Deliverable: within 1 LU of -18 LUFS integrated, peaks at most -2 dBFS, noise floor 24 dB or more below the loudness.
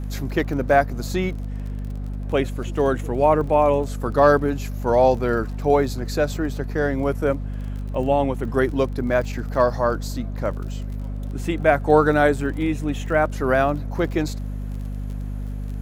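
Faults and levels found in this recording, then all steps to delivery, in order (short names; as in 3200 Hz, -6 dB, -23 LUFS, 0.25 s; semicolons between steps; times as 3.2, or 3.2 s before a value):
ticks 32/s; hum 50 Hz; harmonics up to 250 Hz; hum level -26 dBFS; loudness -22.5 LUFS; peak -2.5 dBFS; loudness target -18.0 LUFS
-> de-click; notches 50/100/150/200/250 Hz; gain +4.5 dB; limiter -2 dBFS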